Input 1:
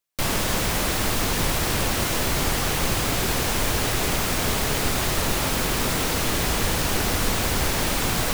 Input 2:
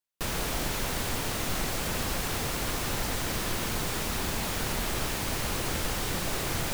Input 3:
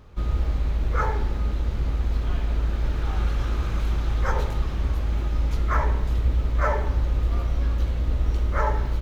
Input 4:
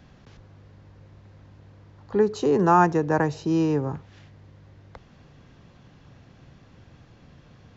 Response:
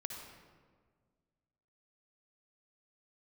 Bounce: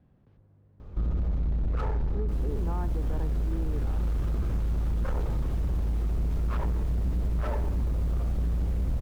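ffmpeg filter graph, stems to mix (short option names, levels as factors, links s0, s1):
-filter_complex "[0:a]asoftclip=type=tanh:threshold=0.0501,adelay=2100,volume=0.141[s0];[1:a]adelay=2350,volume=0.141[s1];[2:a]asoftclip=type=hard:threshold=0.0631,adelay=800,volume=0.75[s2];[3:a]lowpass=3600,volume=0.141[s3];[s0][s1][s2][s3]amix=inputs=4:normalize=0,tiltshelf=f=970:g=7.5,acompressor=threshold=0.0562:ratio=6"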